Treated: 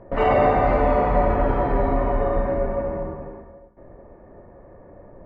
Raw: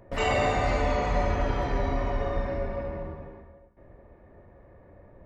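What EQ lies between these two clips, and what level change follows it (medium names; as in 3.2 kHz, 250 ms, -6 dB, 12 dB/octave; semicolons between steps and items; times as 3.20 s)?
low-pass 1.3 kHz 12 dB/octave; peaking EQ 74 Hz -7.5 dB 1.7 oct; +9.0 dB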